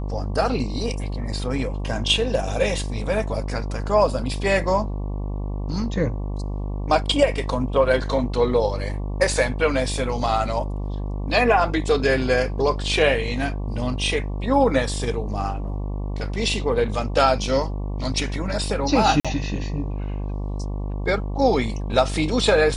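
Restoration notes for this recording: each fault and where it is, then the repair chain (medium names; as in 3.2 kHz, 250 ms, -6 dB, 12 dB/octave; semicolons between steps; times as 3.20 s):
buzz 50 Hz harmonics 23 -27 dBFS
19.20–19.25 s: dropout 46 ms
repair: de-hum 50 Hz, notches 23; interpolate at 19.20 s, 46 ms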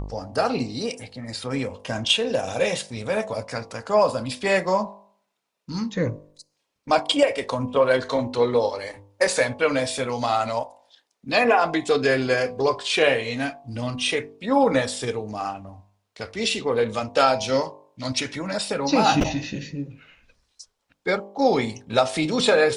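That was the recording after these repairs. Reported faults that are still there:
nothing left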